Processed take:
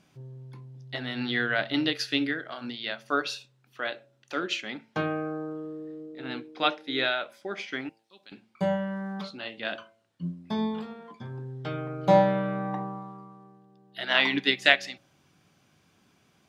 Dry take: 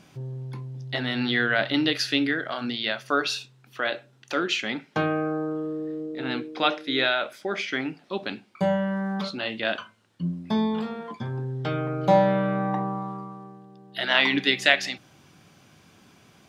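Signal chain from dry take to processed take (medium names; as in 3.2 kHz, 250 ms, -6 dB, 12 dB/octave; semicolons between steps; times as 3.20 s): 7.89–8.32 s: pre-emphasis filter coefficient 0.9; de-hum 111.9 Hz, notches 9; upward expansion 1.5:1, over -34 dBFS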